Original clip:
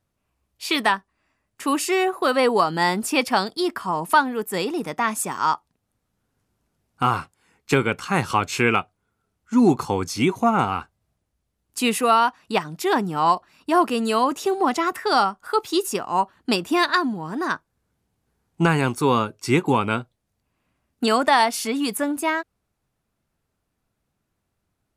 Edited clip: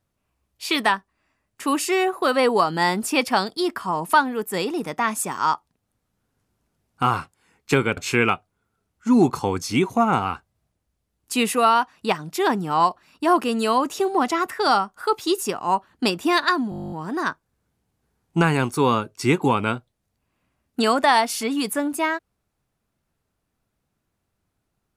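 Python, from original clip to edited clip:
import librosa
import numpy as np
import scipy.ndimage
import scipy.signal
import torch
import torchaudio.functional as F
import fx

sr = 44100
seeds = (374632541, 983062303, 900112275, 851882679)

y = fx.edit(x, sr, fx.cut(start_s=7.97, length_s=0.46),
    fx.stutter(start_s=17.16, slice_s=0.02, count=12), tone=tone)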